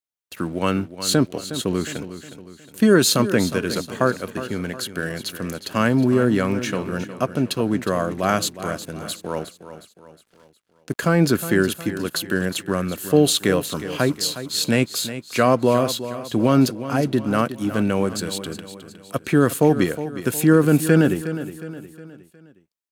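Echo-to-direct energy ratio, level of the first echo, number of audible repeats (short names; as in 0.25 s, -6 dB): -11.5 dB, -12.5 dB, 4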